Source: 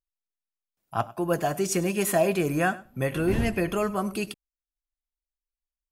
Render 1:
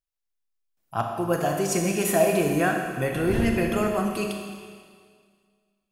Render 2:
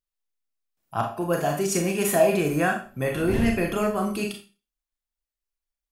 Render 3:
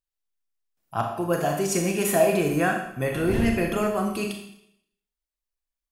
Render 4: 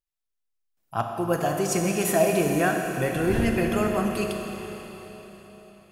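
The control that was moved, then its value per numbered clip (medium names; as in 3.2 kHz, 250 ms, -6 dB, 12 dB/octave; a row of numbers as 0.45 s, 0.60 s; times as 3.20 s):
Schroeder reverb, RT60: 1.9 s, 0.33 s, 0.74 s, 4.2 s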